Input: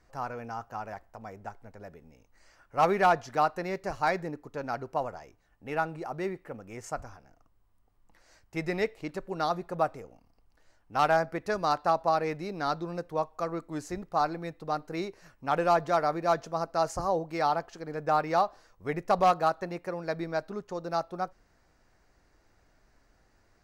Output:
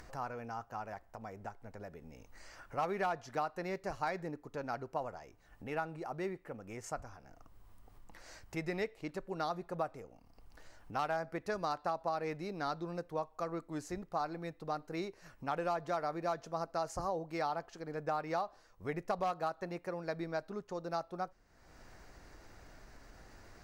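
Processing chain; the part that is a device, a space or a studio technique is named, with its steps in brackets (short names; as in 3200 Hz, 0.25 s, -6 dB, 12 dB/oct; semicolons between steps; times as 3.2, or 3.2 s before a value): upward and downward compression (upward compressor, threshold -36 dBFS; compressor 4:1, threshold -27 dBFS, peak gain reduction 8.5 dB); gain -5 dB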